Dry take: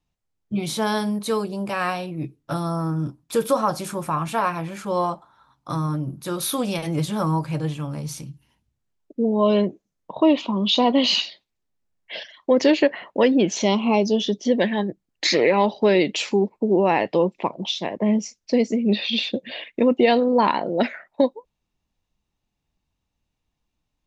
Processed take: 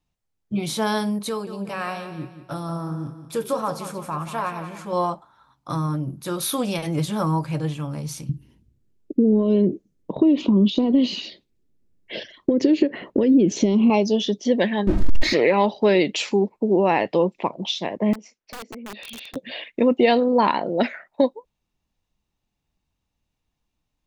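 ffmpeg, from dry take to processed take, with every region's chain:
ffmpeg -i in.wav -filter_complex "[0:a]asettb=1/sr,asplit=3[link_01][link_02][link_03];[link_01]atrim=end=1.294[link_04];[link_02]atrim=start=1.29:end=4.93,asetpts=PTS-STARTPTS,afade=type=in:duration=0.004:curve=qsin,afade=type=out:start_time=3.636:duration=0.004:curve=qsin,flanger=delay=4.6:depth=8.5:regen=87:speed=1:shape=triangular,aecho=1:1:178|356|534|712:0.282|0.107|0.0407|0.0155,atrim=end_sample=160524[link_05];[link_03]atrim=start=4.926[link_06];[link_04][link_05]acrossfade=duration=0.004:curve1=hsin:curve2=qsin[link_07];[link_07][link_06]acrossfade=duration=0.004:curve1=qsin:curve2=hsin,asettb=1/sr,asplit=3[link_08][link_09][link_10];[link_08]atrim=end=8.294[link_11];[link_09]atrim=start=8.29:end=13.9,asetpts=PTS-STARTPTS,afade=type=in:duration=0.004:curve=qsin,afade=type=out:start_time=5.606:duration=0.004:curve=qsin,acompressor=threshold=-26dB:ratio=10:attack=3.2:release=140:knee=1:detection=peak,lowshelf=frequency=540:width_type=q:width=1.5:gain=12.5[link_12];[link_10]atrim=start=13.896[link_13];[link_11][link_12]acrossfade=duration=0.004:curve1=hsin:curve2=qsin[link_14];[link_14][link_13]acrossfade=duration=0.004:curve1=qsin:curve2=hsin,asettb=1/sr,asplit=3[link_15][link_16][link_17];[link_15]atrim=end=14.874[link_18];[link_16]atrim=start=14.87:end=15.33,asetpts=PTS-STARTPTS,afade=type=in:duration=0.004:curve=qsin,afade=type=out:start_time=0.456:duration=0.004:curve=qsin,aeval=exprs='val(0)+0.5*0.0531*sgn(val(0))':channel_layout=same,aemphasis=mode=reproduction:type=riaa,aecho=1:1:3.2:0.57,atrim=end_sample=20286[link_19];[link_17]atrim=start=15.326[link_20];[link_18][link_19]acrossfade=duration=0.004:curve1=hsin:curve2=qsin[link_21];[link_21][link_20]acrossfade=duration=0.004:curve1=qsin:curve2=hsin,asettb=1/sr,asplit=3[link_22][link_23][link_24];[link_22]atrim=end=18.134[link_25];[link_23]atrim=start=18.13:end=19.36,asetpts=PTS-STARTPTS,afade=type=in:duration=0.004:curve=qsin,afade=type=out:start_time=1.226:duration=0.004:curve=qsin,acrossover=split=270 3000:gain=0.2 1 0.158[link_26][link_27][link_28];[link_26][link_27][link_28]amix=inputs=3:normalize=0,acompressor=threshold=-37dB:ratio=3:attack=3.2:release=140:knee=1:detection=peak,aeval=exprs='(mod(31.6*val(0)+1,2)-1)/31.6':channel_layout=same[link_29];[link_24]atrim=start=19.356[link_30];[link_25][link_29]acrossfade=duration=0.004:curve1=hsin:curve2=qsin[link_31];[link_31][link_30]acrossfade=duration=0.004:curve1=qsin:curve2=hsin" out.wav

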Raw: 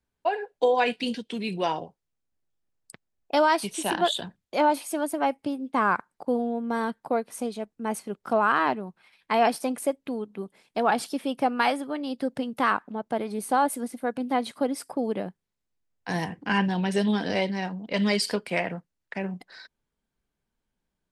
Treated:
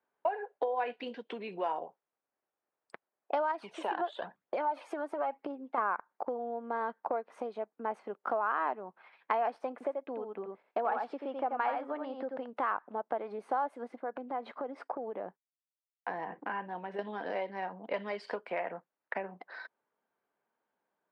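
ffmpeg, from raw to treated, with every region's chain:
ffmpeg -i in.wav -filter_complex "[0:a]asettb=1/sr,asplit=3[link_01][link_02][link_03];[link_01]atrim=end=3.514[link_04];[link_02]atrim=start=3.51:end=5.78,asetpts=PTS-STARTPTS,afade=type=in:duration=0.004:curve=qsin,afade=type=out:start_time=2.266:duration=0.004:curve=qsin,highpass=62,acompressor=threshold=-28dB:ratio=3:attack=3.2:release=140:knee=1:detection=peak,aphaser=in_gain=1:out_gain=1:delay=3:decay=0.47:speed=1:type=triangular[link_05];[link_03]atrim=start=5.776[link_06];[link_04][link_05]acrossfade=duration=0.004:curve1=hsin:curve2=qsin[link_07];[link_07][link_06]acrossfade=duration=0.004:curve1=qsin:curve2=hsin,asettb=1/sr,asplit=3[link_08][link_09][link_10];[link_08]atrim=end=9.724[link_11];[link_09]atrim=start=9.72:end=12.46,asetpts=PTS-STARTPTS,afade=type=in:duration=0.004:curve=qsin,afade=type=out:start_time=2.736:duration=0.004:curve=qsin,agate=range=-33dB:threshold=-52dB:ratio=3:release=100:detection=peak,highshelf=frequency=5700:gain=-9.5,aecho=1:1:85:0.531,atrim=end_sample=120834[link_12];[link_10]atrim=start=12.456[link_13];[link_11][link_12]acrossfade=duration=0.004:curve1=hsin:curve2=qsin[link_14];[link_14][link_13]acrossfade=duration=0.004:curve1=qsin:curve2=hsin,asettb=1/sr,asplit=3[link_15][link_16][link_17];[link_15]atrim=end=13.964[link_18];[link_16]atrim=start=13.96:end=16.99,asetpts=PTS-STARTPTS,afade=type=in:duration=0.004:curve=qsin,afade=type=out:start_time=3.026:duration=0.004:curve=qsin,agate=range=-33dB:threshold=-51dB:ratio=3:release=100:detection=peak,lowpass=frequency=2400:poles=1,acompressor=threshold=-35dB:ratio=4:attack=3.2:release=140:knee=1:detection=peak[link_19];[link_17]atrim=start=16.986[link_20];[link_18][link_19]acrossfade=duration=0.004:curve1=hsin:curve2=qsin[link_21];[link_21][link_20]acrossfade=duration=0.004:curve1=qsin:curve2=hsin,lowpass=1300,acompressor=threshold=-36dB:ratio=6,highpass=570,volume=8.5dB" out.wav

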